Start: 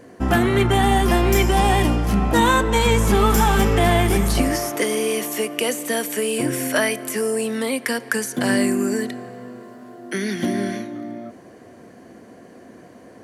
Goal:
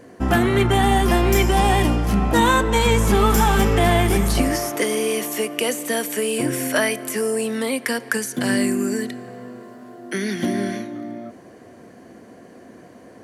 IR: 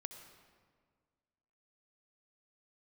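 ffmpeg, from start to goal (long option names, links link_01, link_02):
-filter_complex "[0:a]asettb=1/sr,asplit=3[link_01][link_02][link_03];[link_01]atrim=end=8.174[link_04];[link_02]atrim=start=8.17:end=9.28,asetpts=PTS-STARTPTS,afade=type=in:duration=0.004:curve=qsin,afade=type=out:start_time=1.106:duration=0.004:curve=qsin,equalizer=frequency=770:width_type=o:width=1.7:gain=-4[link_05];[link_03]atrim=start=9.276[link_06];[link_04][link_05]acrossfade=duration=0.004:curve1=hsin:curve2=qsin[link_07];[link_07][link_06]acrossfade=duration=0.004:curve1=qsin:curve2=hsin"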